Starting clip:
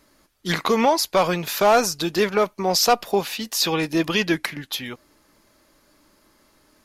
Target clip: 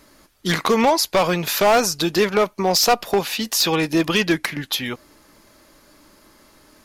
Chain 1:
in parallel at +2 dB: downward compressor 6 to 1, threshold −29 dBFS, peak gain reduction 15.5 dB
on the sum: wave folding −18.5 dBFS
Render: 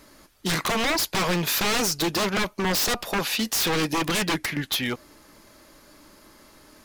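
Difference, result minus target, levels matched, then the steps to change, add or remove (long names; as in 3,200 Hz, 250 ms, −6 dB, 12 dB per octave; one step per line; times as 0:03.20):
wave folding: distortion +25 dB
change: wave folding −9.5 dBFS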